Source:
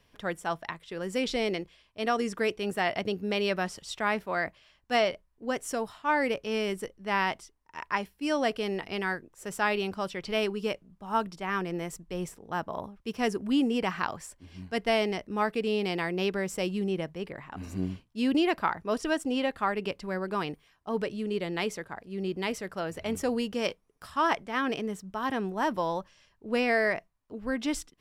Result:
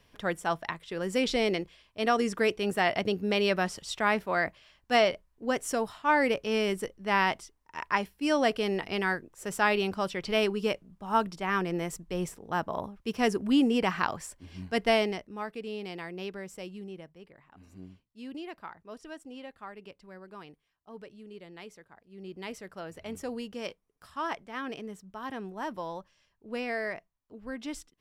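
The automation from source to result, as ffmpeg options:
ffmpeg -i in.wav -af "volume=10dB,afade=type=out:start_time=14.91:duration=0.41:silence=0.281838,afade=type=out:start_time=16.25:duration=1.04:silence=0.473151,afade=type=in:start_time=22.04:duration=0.49:silence=0.398107" out.wav

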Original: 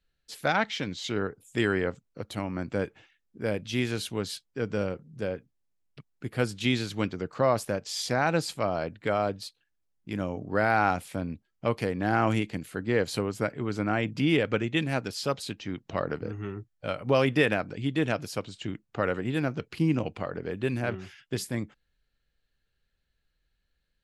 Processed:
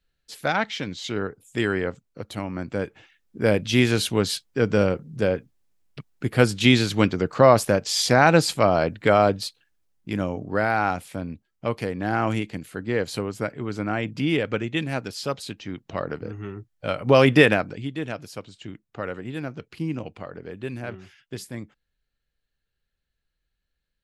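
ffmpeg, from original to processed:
ffmpeg -i in.wav -af "volume=17.5dB,afade=type=in:start_time=2.85:duration=0.57:silence=0.421697,afade=type=out:start_time=9.34:duration=1.4:silence=0.375837,afade=type=in:start_time=16.59:duration=0.77:silence=0.398107,afade=type=out:start_time=17.36:duration=0.55:silence=0.237137" out.wav

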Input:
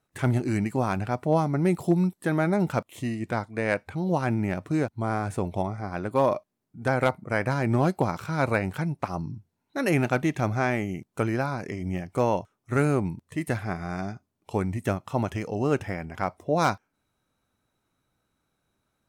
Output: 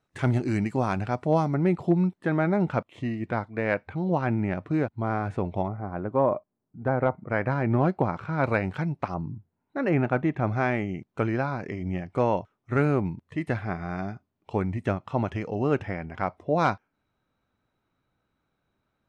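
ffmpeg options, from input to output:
ffmpeg -i in.wav -af "asetnsamples=nb_out_samples=441:pad=0,asendcmd='1.54 lowpass f 2900;5.68 lowpass f 1200;7.18 lowpass f 2200;8.44 lowpass f 3900;9.14 lowpass f 1800;10.47 lowpass f 3400',lowpass=6200" out.wav

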